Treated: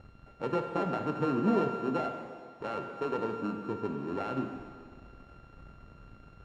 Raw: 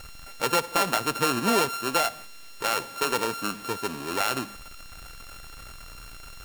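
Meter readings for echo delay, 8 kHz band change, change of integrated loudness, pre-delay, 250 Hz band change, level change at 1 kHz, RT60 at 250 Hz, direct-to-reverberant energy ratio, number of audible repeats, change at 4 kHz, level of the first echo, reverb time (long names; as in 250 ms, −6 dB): no echo audible, below −30 dB, −7.0 dB, 16 ms, +0.5 dB, −8.5 dB, 1.7 s, 4.0 dB, no echo audible, −22.0 dB, no echo audible, 1.9 s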